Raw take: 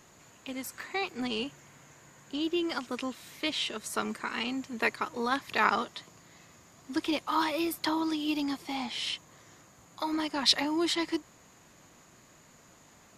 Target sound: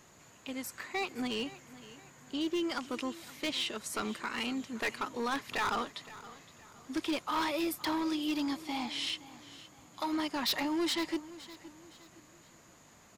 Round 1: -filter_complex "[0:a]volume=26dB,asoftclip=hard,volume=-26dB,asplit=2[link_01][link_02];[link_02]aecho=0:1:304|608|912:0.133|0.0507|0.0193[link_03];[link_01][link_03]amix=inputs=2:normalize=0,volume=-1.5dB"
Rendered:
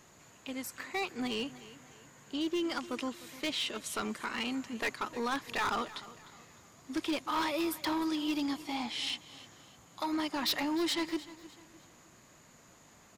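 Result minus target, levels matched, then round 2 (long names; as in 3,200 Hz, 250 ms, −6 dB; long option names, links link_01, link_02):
echo 212 ms early
-filter_complex "[0:a]volume=26dB,asoftclip=hard,volume=-26dB,asplit=2[link_01][link_02];[link_02]aecho=0:1:516|1032|1548:0.133|0.0507|0.0193[link_03];[link_01][link_03]amix=inputs=2:normalize=0,volume=-1.5dB"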